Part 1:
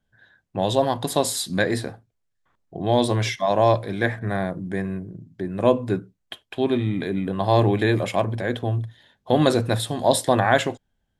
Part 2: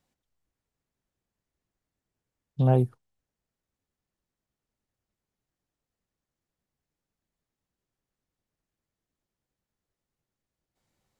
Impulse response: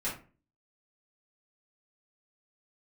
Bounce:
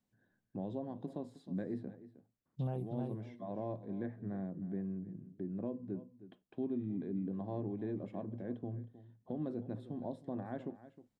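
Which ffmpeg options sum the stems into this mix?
-filter_complex "[0:a]acompressor=threshold=-38dB:ratio=1.5,bandpass=f=230:t=q:w=1.6:csg=0,volume=-4dB,asplit=2[a][b];[b]volume=-16dB[c];[1:a]volume=-11.5dB,asplit=2[d][e];[e]volume=-6.5dB[f];[c][f]amix=inputs=2:normalize=0,aecho=0:1:313:1[g];[a][d][g]amix=inputs=3:normalize=0,alimiter=level_in=4.5dB:limit=-24dB:level=0:latency=1:release=463,volume=-4.5dB"

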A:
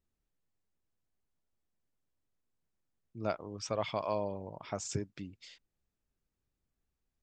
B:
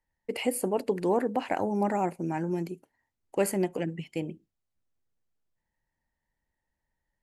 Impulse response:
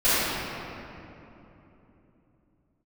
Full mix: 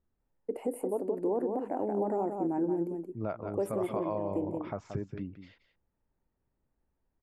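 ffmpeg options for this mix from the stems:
-filter_complex "[0:a]lowpass=1.5k,acontrast=70,volume=-1.5dB,asplit=2[a][b];[b]volume=-12dB[c];[1:a]firequalizer=gain_entry='entry(150,0);entry(290,13);entry(2300,-13);entry(4300,-19);entry(8700,-3)':delay=0.05:min_phase=1,adelay=200,volume=-9dB,asplit=2[d][e];[e]volume=-6.5dB[f];[c][f]amix=inputs=2:normalize=0,aecho=0:1:177:1[g];[a][d][g]amix=inputs=3:normalize=0,alimiter=limit=-22dB:level=0:latency=1:release=192"

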